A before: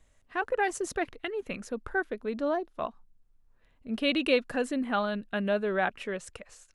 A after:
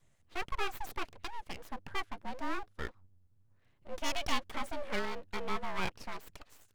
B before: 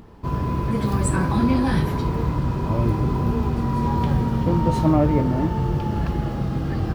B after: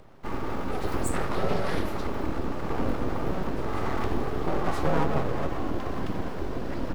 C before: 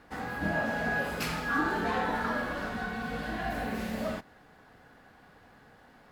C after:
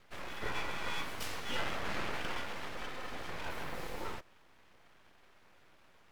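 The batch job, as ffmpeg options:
ffmpeg -i in.wav -af "afreqshift=35,aeval=exprs='abs(val(0))':channel_layout=same,volume=-4.5dB" out.wav

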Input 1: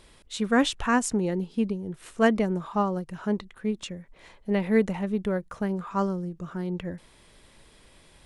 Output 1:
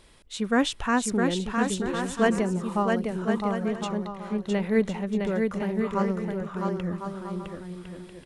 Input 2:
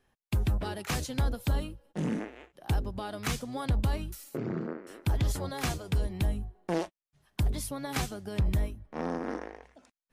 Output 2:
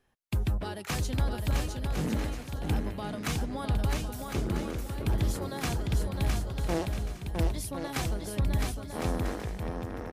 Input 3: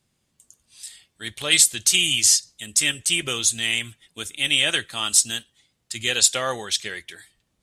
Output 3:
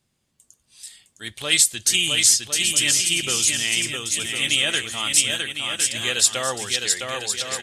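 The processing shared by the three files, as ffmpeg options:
ffmpeg -i in.wav -af "aecho=1:1:660|1056|1294|1436|1522:0.631|0.398|0.251|0.158|0.1,volume=-1dB" out.wav

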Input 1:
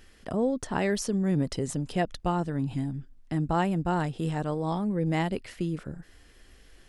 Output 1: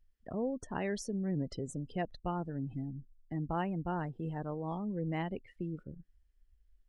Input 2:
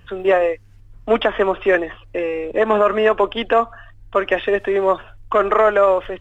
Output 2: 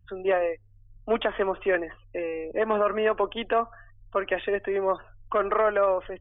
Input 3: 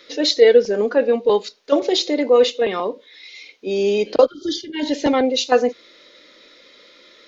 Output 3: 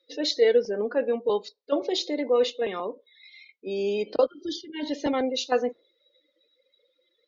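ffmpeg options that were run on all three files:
ffmpeg -i in.wav -af "afftdn=noise_reduction=26:noise_floor=-39,volume=-8.5dB" out.wav

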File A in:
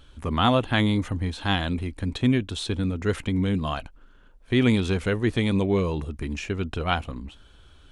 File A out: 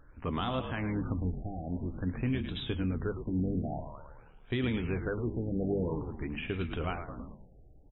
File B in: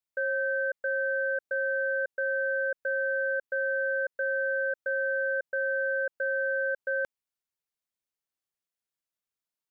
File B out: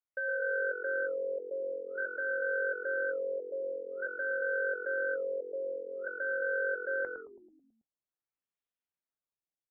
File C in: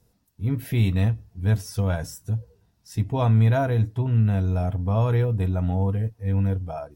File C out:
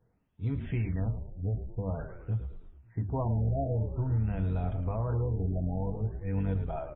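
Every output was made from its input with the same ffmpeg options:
ffmpeg -i in.wav -filter_complex "[0:a]bandreject=frequency=50:width_type=h:width=6,bandreject=frequency=100:width_type=h:width=6,bandreject=frequency=150:width_type=h:width=6,bandreject=frequency=200:width_type=h:width=6,bandreject=frequency=250:width_type=h:width=6,flanger=delay=6.4:depth=1.1:regen=-70:speed=0.5:shape=sinusoidal,alimiter=limit=-23dB:level=0:latency=1:release=377,asplit=2[link_01][link_02];[link_02]asplit=7[link_03][link_04][link_05][link_06][link_07][link_08][link_09];[link_03]adelay=109,afreqshift=-45,volume=-8.5dB[link_10];[link_04]adelay=218,afreqshift=-90,volume=-13.7dB[link_11];[link_05]adelay=327,afreqshift=-135,volume=-18.9dB[link_12];[link_06]adelay=436,afreqshift=-180,volume=-24.1dB[link_13];[link_07]adelay=545,afreqshift=-225,volume=-29.3dB[link_14];[link_08]adelay=654,afreqshift=-270,volume=-34.5dB[link_15];[link_09]adelay=763,afreqshift=-315,volume=-39.7dB[link_16];[link_10][link_11][link_12][link_13][link_14][link_15][link_16]amix=inputs=7:normalize=0[link_17];[link_01][link_17]amix=inputs=2:normalize=0,afftfilt=real='re*lt(b*sr/1024,780*pow(4000/780,0.5+0.5*sin(2*PI*0.49*pts/sr)))':imag='im*lt(b*sr/1024,780*pow(4000/780,0.5+0.5*sin(2*PI*0.49*pts/sr)))':win_size=1024:overlap=0.75" out.wav

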